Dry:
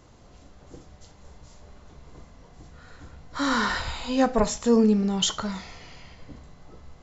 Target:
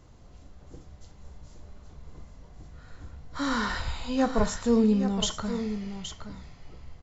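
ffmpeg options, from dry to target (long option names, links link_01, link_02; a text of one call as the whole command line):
ffmpeg -i in.wav -af "lowshelf=frequency=150:gain=8.5,aecho=1:1:820:0.316,volume=-5dB" out.wav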